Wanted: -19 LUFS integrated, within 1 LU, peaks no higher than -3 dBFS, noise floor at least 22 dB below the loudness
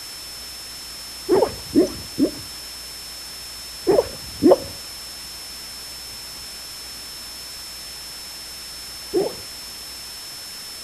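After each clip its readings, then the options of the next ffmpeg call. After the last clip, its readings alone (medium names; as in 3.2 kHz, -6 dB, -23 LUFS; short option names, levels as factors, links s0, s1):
steady tone 5.3 kHz; tone level -35 dBFS; noise floor -36 dBFS; noise floor target -48 dBFS; loudness -26.0 LUFS; peak level -1.5 dBFS; loudness target -19.0 LUFS
-> -af "bandreject=f=5300:w=30"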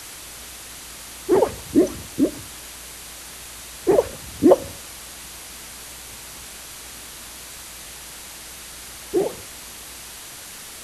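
steady tone not found; noise floor -39 dBFS; noise floor target -49 dBFS
-> -af "afftdn=nr=10:nf=-39"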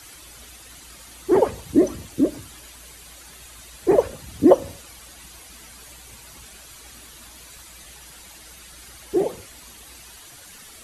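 noise floor -45 dBFS; loudness -21.5 LUFS; peak level -1.5 dBFS; loudness target -19.0 LUFS
-> -af "volume=1.33,alimiter=limit=0.708:level=0:latency=1"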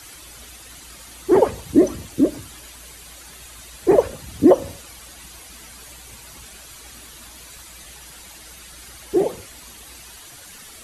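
loudness -19.5 LUFS; peak level -3.0 dBFS; noise floor -43 dBFS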